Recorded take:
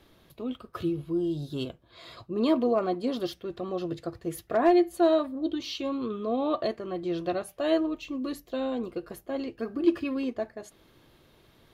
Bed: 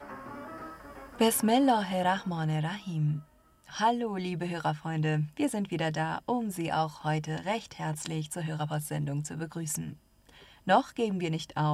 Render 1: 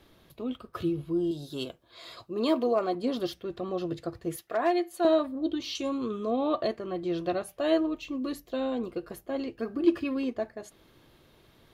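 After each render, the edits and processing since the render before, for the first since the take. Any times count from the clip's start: 1.31–2.95 tone controls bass -8 dB, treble +5 dB; 4.36–5.05 HPF 700 Hz 6 dB/oct; 5.75–6.31 band shelf 7700 Hz +11.5 dB 1.1 oct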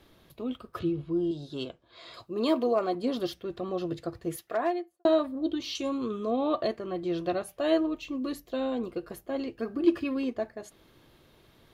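0.79–2.14 air absorption 87 m; 4.51–5.05 studio fade out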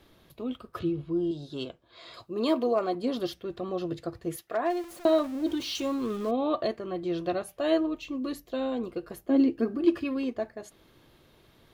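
4.7–6.31 zero-crossing step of -40 dBFS; 9.29–9.76 bell 290 Hz +14.5 dB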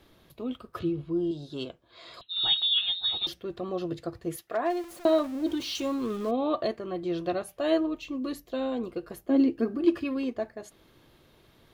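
2.21–3.27 inverted band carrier 4000 Hz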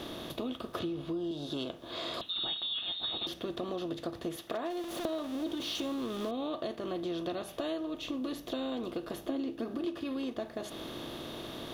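per-bin compression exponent 0.6; compressor 5:1, threshold -34 dBFS, peak gain reduction 16.5 dB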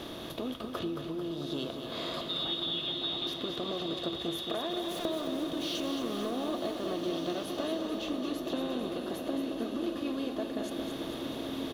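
feedback echo 0.222 s, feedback 57%, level -7 dB; bloom reverb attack 1.77 s, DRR 5 dB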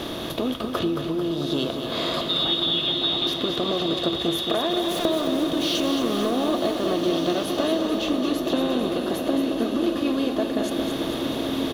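gain +10.5 dB

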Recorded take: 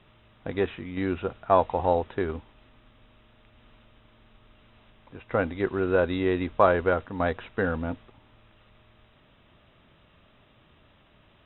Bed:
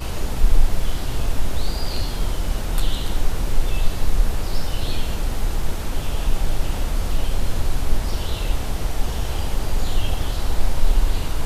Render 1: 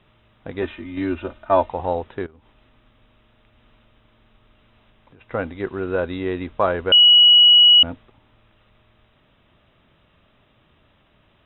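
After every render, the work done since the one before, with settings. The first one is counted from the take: 0.62–1.69 comb 3.3 ms, depth 97%; 2.26–5.21 compressor 12:1, threshold -45 dBFS; 6.92–7.83 bleep 2920 Hz -7.5 dBFS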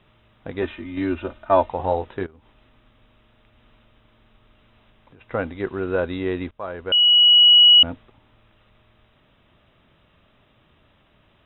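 1.77–2.24 doubler 21 ms -7 dB; 6.51–7.86 fade in equal-power, from -20.5 dB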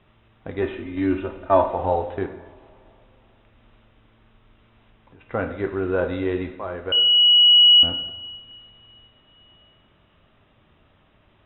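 air absorption 170 m; two-slope reverb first 0.84 s, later 3.4 s, from -20 dB, DRR 5.5 dB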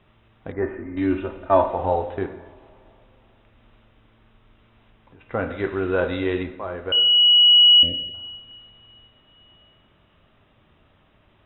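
0.52–0.97 Chebyshev low-pass 1900 Hz, order 4; 5.5–6.43 high shelf 2100 Hz +9 dB; 7.17–8.14 brick-wall FIR band-stop 650–1700 Hz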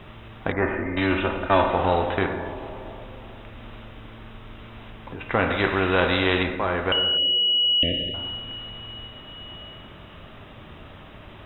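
spectral compressor 2:1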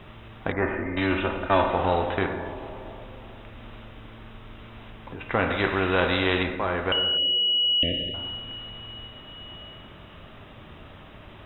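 gain -2 dB

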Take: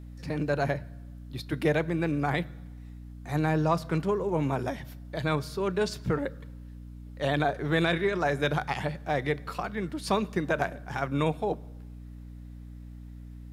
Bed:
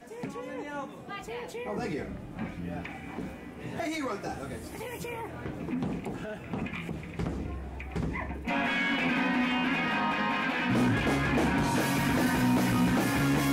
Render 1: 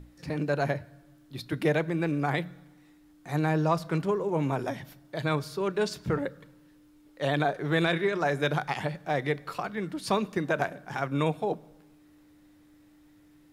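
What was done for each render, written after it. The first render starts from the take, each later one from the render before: notches 60/120/180/240 Hz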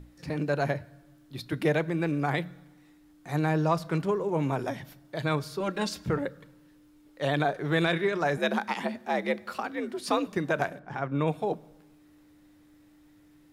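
5.6–6.04 comb 3.7 ms, depth 85%; 8.37–10.27 frequency shift +67 Hz; 10.79–11.28 LPF 1500 Hz 6 dB/oct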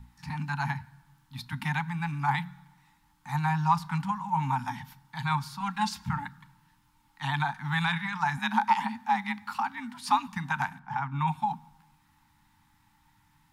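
Chebyshev band-stop 250–820 Hz, order 4; bell 900 Hz +12.5 dB 0.35 oct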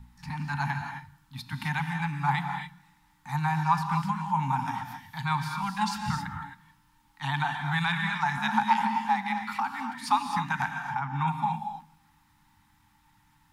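non-linear reverb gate 0.29 s rising, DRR 4.5 dB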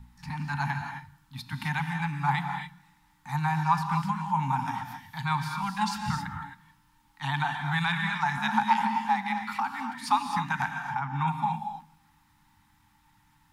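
nothing audible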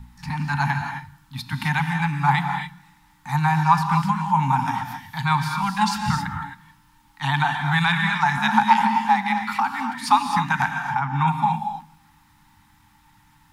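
gain +7.5 dB

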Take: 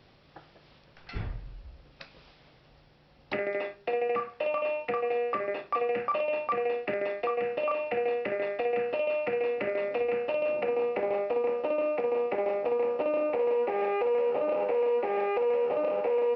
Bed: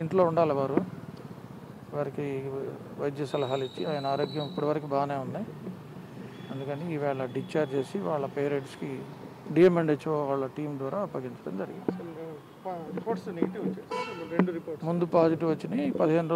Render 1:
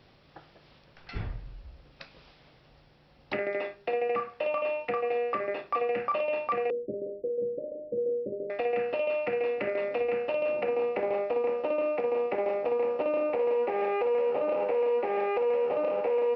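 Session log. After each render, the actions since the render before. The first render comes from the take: 6.7–8.5 steep low-pass 570 Hz 96 dB/oct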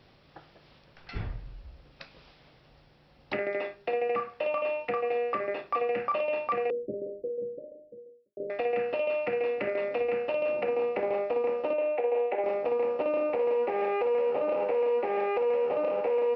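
6.79–8.37 studio fade out; 11.73–12.44 speaker cabinet 420–3500 Hz, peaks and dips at 480 Hz +3 dB, 760 Hz +4 dB, 1200 Hz -9 dB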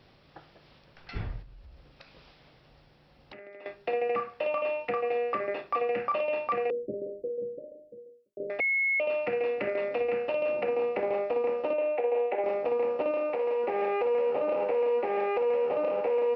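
1.42–3.66 compressor 4:1, threshold -47 dBFS; 8.6–9 bleep 2180 Hz -23.5 dBFS; 13.11–13.64 low shelf 250 Hz -9.5 dB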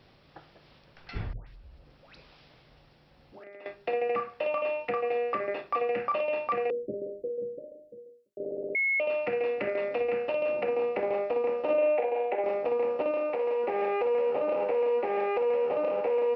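1.33–3.44 dispersion highs, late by 0.142 s, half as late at 1100 Hz; 8.39 stutter in place 0.06 s, 6 plays; 11.63–12.33 doubler 43 ms -4 dB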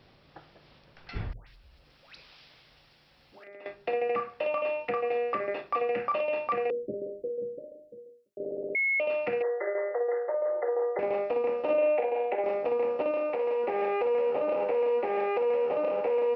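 1.32–3.48 tilt shelf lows -6.5 dB, about 1200 Hz; 9.42–10.99 brick-wall FIR band-pass 330–2100 Hz; 15.09–16.04 HPF 79 Hz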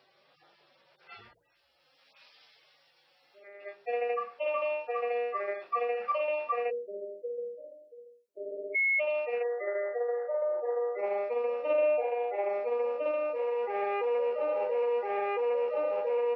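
median-filter separation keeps harmonic; HPF 450 Hz 12 dB/oct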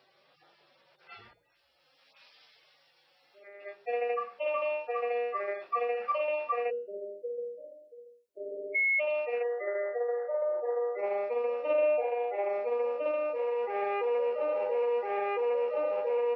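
de-hum 206 Hz, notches 37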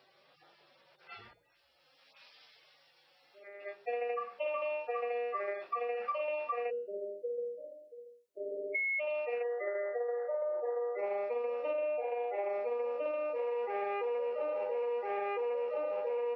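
compressor, threshold -32 dBFS, peak gain reduction 8.5 dB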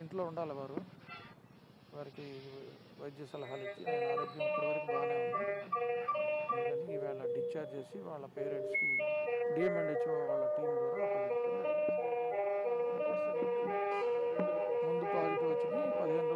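add bed -15.5 dB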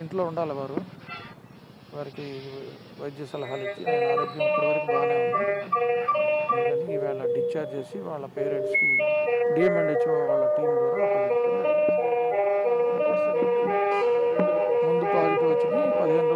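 gain +11.5 dB

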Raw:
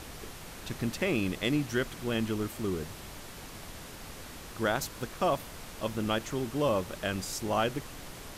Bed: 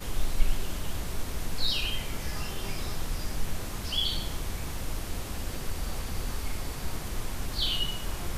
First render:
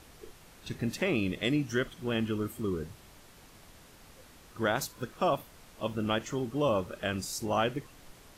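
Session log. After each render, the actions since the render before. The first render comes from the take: noise print and reduce 10 dB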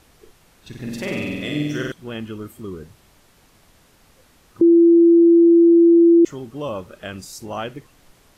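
0.68–1.92 flutter echo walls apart 8.1 m, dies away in 1.4 s; 4.61–6.25 bleep 338 Hz -8 dBFS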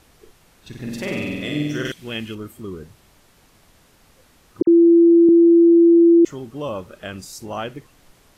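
1.85–2.35 resonant high shelf 1700 Hz +6.5 dB, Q 1.5; 4.62–5.29 dispersion lows, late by 53 ms, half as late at 2700 Hz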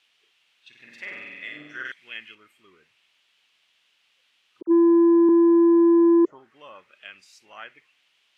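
auto-wah 380–3000 Hz, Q 3.1, down, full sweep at -10 dBFS; soft clip -12 dBFS, distortion -20 dB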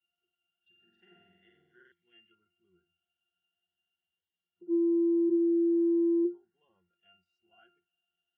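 octave resonator F, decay 0.23 s; cascading phaser rising 0.42 Hz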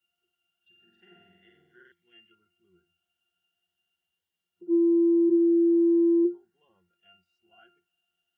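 gain +5 dB

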